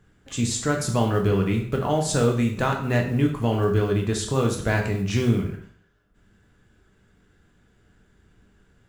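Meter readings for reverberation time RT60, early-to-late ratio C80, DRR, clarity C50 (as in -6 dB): 0.55 s, 10.5 dB, 1.0 dB, 7.0 dB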